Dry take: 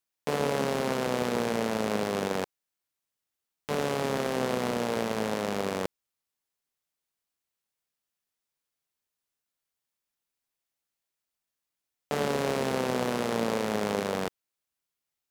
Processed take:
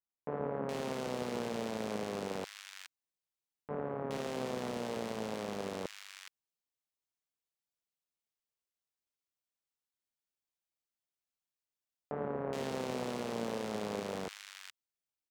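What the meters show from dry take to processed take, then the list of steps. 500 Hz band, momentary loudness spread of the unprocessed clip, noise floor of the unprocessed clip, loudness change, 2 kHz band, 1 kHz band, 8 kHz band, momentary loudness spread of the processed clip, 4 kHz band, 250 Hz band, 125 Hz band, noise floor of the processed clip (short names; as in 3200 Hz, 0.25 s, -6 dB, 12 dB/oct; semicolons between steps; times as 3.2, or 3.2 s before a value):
-8.5 dB, 6 LU, under -85 dBFS, -9.0 dB, -11.0 dB, -9.5 dB, -9.5 dB, 12 LU, -9.0 dB, -8.5 dB, -8.5 dB, under -85 dBFS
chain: bell 12000 Hz -6.5 dB 0.41 oct; bands offset in time lows, highs 0.42 s, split 1600 Hz; gain -8.5 dB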